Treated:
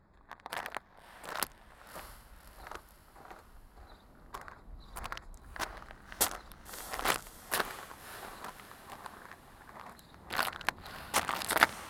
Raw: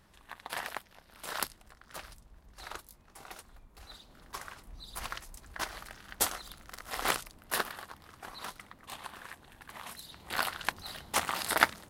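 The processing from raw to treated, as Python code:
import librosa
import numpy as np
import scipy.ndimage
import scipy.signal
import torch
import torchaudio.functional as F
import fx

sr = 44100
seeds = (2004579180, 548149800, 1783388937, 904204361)

y = fx.wiener(x, sr, points=15)
y = fx.echo_diffused(y, sr, ms=603, feedback_pct=51, wet_db=-13.5)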